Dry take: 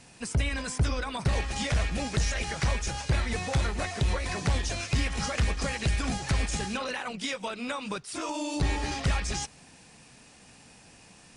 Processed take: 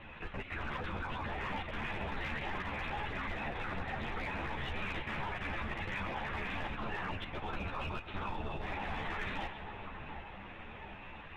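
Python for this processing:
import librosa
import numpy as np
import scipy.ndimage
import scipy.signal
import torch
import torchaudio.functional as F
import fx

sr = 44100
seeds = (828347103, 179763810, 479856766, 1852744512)

p1 = 10.0 ** (-31.0 / 20.0) * np.tanh(x / 10.0 ** (-31.0 / 20.0))
p2 = x + (p1 * librosa.db_to_amplitude(-11.0))
p3 = scipy.signal.sosfilt(scipy.signal.butter(4, 230.0, 'highpass', fs=sr, output='sos'), p2)
p4 = fx.tilt_eq(p3, sr, slope=2.5)
p5 = fx.lpc_vocoder(p4, sr, seeds[0], excitation='whisper', order=8)
p6 = fx.over_compress(p5, sr, threshold_db=-35.0, ratio=-0.5)
p7 = fx.mod_noise(p6, sr, seeds[1], snr_db=16)
p8 = scipy.signal.sosfilt(scipy.signal.butter(2, 1900.0, 'lowpass', fs=sr, output='sos'), p7)
p9 = fx.level_steps(p8, sr, step_db=11)
p10 = p9 + fx.echo_split(p9, sr, split_hz=1500.0, low_ms=732, high_ms=131, feedback_pct=52, wet_db=-8, dry=0)
p11 = np.clip(10.0 ** (36.0 / 20.0) * p10, -1.0, 1.0) / 10.0 ** (36.0 / 20.0)
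p12 = fx.ensemble(p11, sr)
y = p12 * librosa.db_to_amplitude(8.0)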